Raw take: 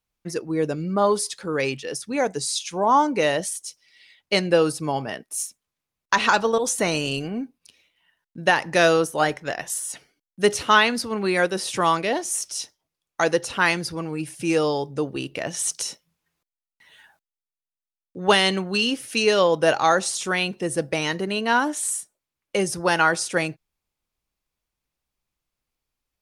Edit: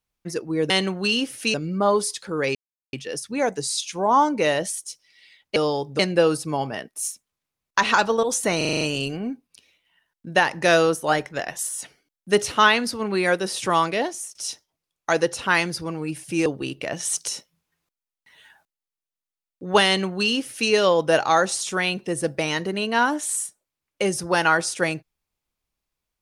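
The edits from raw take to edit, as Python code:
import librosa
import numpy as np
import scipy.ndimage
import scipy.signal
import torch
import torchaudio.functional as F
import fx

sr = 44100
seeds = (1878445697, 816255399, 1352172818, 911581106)

y = fx.edit(x, sr, fx.insert_silence(at_s=1.71, length_s=0.38),
    fx.stutter(start_s=6.92, slice_s=0.04, count=7),
    fx.fade_out_to(start_s=12.12, length_s=0.34, floor_db=-20.0),
    fx.move(start_s=14.57, length_s=0.43, to_s=4.34),
    fx.duplicate(start_s=18.4, length_s=0.84, to_s=0.7), tone=tone)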